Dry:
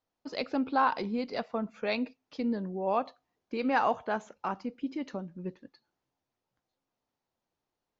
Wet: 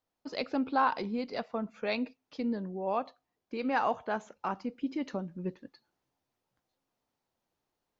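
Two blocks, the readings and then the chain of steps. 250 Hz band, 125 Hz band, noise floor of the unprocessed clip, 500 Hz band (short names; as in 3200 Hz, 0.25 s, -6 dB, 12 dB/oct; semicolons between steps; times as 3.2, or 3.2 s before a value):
-1.0 dB, -0.5 dB, under -85 dBFS, -1.5 dB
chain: vocal rider within 4 dB 2 s; gain -2 dB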